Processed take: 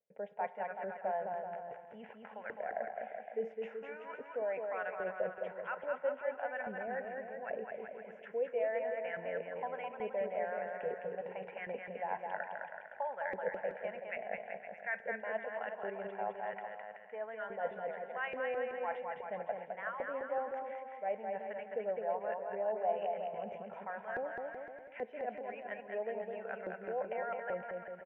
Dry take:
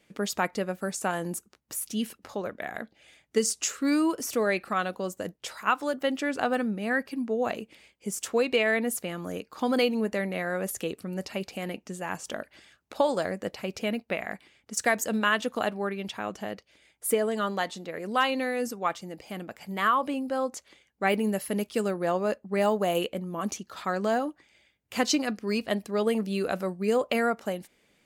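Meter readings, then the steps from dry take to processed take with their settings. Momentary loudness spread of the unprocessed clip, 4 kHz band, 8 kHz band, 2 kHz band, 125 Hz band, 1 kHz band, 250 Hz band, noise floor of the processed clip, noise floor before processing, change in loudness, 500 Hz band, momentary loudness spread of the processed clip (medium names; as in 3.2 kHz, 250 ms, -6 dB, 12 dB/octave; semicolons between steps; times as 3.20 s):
12 LU, under -25 dB, under -40 dB, -10.5 dB, -20.0 dB, -8.5 dB, -23.0 dB, -53 dBFS, -68 dBFS, -11.0 dB, -8.0 dB, 8 LU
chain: low-pass 2.6 kHz 24 dB/octave; gate with hold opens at -57 dBFS; bass shelf 190 Hz -5 dB; reverse; compression 5:1, threshold -41 dBFS, peak gain reduction 20 dB; reverse; static phaser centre 1.2 kHz, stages 6; LFO band-pass saw up 1.2 Hz 390–1700 Hz; on a send: bouncing-ball echo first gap 210 ms, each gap 0.8×, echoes 5; on the sum: spring tank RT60 2 s, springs 32 ms, chirp 50 ms, DRR 17.5 dB; trim +12 dB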